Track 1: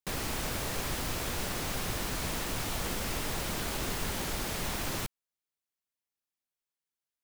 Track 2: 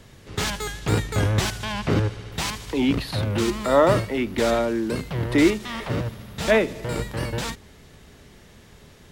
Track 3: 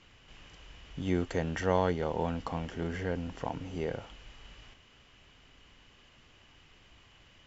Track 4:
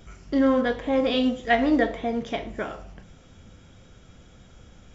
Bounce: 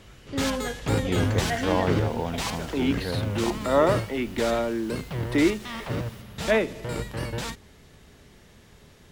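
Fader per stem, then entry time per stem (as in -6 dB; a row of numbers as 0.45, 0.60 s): -17.5, -3.5, +2.0, -9.0 dB; 1.15, 0.00, 0.00, 0.00 s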